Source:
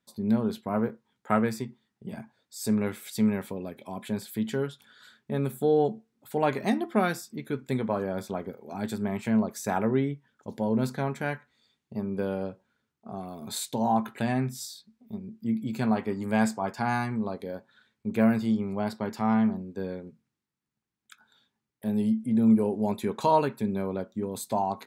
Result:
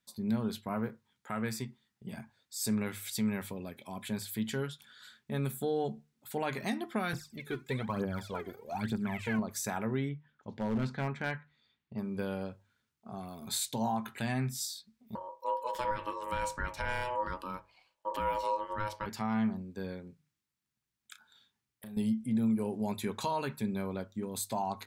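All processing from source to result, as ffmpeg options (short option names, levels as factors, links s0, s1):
-filter_complex "[0:a]asettb=1/sr,asplit=3[s0][s1][s2];[s0]atrim=end=7.134[s3];[s1]atrim=start=7.13:end=9.39,asetpts=PTS-STARTPTS,afade=t=in:d=0.004:c=qsin,afade=t=out:st=2.256:d=0.004:c=qsin,acrossover=split=3400[s4][s5];[s5]acompressor=threshold=0.00112:ratio=4:attack=1:release=60[s6];[s4][s6]amix=inputs=2:normalize=0,aphaser=in_gain=1:out_gain=1:delay=3:decay=0.74:speed=1.1:type=triangular[s7];[s2]atrim=start=9.386[s8];[s3][s7]acrossfade=d=0.004:c1=hsin:c2=qsin[s9];[s9][s8]acrossfade=d=0.004:c1=qsin:c2=hsin,asettb=1/sr,asplit=3[s10][s11][s12];[s10]atrim=end=10.094[s13];[s11]atrim=start=10.09:end=11.99,asetpts=PTS-STARTPTS,afade=t=in:d=0.004:c=qsin,afade=t=out:st=1.896:d=0.004:c=qsin,lowpass=3000,volume=11.2,asoftclip=hard,volume=0.0891[s14];[s12]atrim=start=11.986[s15];[s13][s14]acrossfade=d=0.004:c1=hsin:c2=qsin[s16];[s16][s15]acrossfade=d=0.004:c1=qsin:c2=hsin,asettb=1/sr,asplit=3[s17][s18][s19];[s17]atrim=end=15.154[s20];[s18]atrim=start=15.15:end=19.06,asetpts=PTS-STARTPTS,afade=t=in:d=0.004:c=qsin,afade=t=out:st=3.906:d=0.004:c=qsin,lowshelf=f=280:g=7.5,bandreject=f=50:t=h:w=6,bandreject=f=100:t=h:w=6,bandreject=f=150:t=h:w=6,bandreject=f=200:t=h:w=6,bandreject=f=250:t=h:w=6,bandreject=f=300:t=h:w=6,bandreject=f=350:t=h:w=6,bandreject=f=400:t=h:w=6,bandreject=f=450:t=h:w=6,aeval=exprs='val(0)*sin(2*PI*740*n/s)':c=same[s21];[s19]atrim=start=19.056[s22];[s20][s21]acrossfade=d=0.004:c1=hsin:c2=qsin[s23];[s23][s22]acrossfade=d=0.004:c1=qsin:c2=hsin,asettb=1/sr,asplit=3[s24][s25][s26];[s24]atrim=end=20.064[s27];[s25]atrim=start=20.06:end=21.97,asetpts=PTS-STARTPTS,afade=t=in:d=0.004:c=qsin,afade=t=out:st=1.906:d=0.004:c=qsin,acompressor=threshold=0.0126:ratio=8:attack=3.2:release=140:knee=1:detection=peak,asplit=2[s28][s29];[s29]adelay=34,volume=0.355[s30];[s28][s30]amix=inputs=2:normalize=0,atrim=end_sample=84231[s31];[s26]atrim=start=21.966[s32];[s27][s31]acrossfade=d=0.004:c1=hsin:c2=qsin[s33];[s33][s32]acrossfade=d=0.004:c1=qsin:c2=hsin,equalizer=f=420:w=0.39:g=-9.5,bandreject=f=50:t=h:w=6,bandreject=f=100:t=h:w=6,bandreject=f=150:t=h:w=6,alimiter=level_in=1.06:limit=0.0631:level=0:latency=1:release=141,volume=0.944,volume=1.26"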